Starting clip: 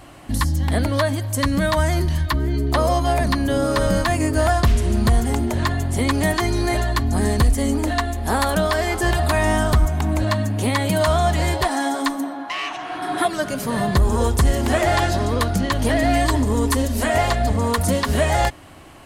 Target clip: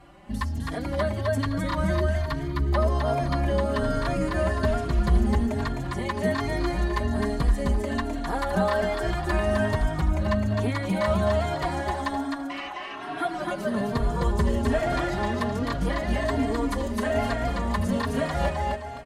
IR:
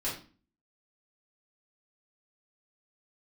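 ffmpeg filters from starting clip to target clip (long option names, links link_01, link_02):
-filter_complex "[0:a]lowpass=frequency=2400:poles=1,aecho=1:1:5:0.38,aecho=1:1:259|518|777|1036|1295:0.708|0.276|0.108|0.042|0.0164,asplit=2[link_01][link_02];[link_02]adelay=3.7,afreqshift=1.2[link_03];[link_01][link_03]amix=inputs=2:normalize=1,volume=-4.5dB"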